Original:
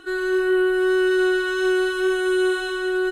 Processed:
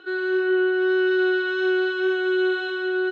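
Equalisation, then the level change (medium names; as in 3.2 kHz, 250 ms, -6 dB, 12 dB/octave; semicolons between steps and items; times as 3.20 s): distance through air 230 m; cabinet simulation 270–7300 Hz, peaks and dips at 280 Hz -9 dB, 670 Hz -6 dB, 1.1 kHz -9 dB, 1.9 kHz -8 dB, 2.8 kHz -3 dB, 5.9 kHz -8 dB; bass shelf 450 Hz -6 dB; +5.5 dB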